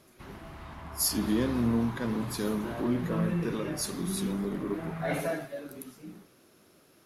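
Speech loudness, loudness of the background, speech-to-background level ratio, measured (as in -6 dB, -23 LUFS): -31.0 LUFS, -45.0 LUFS, 14.0 dB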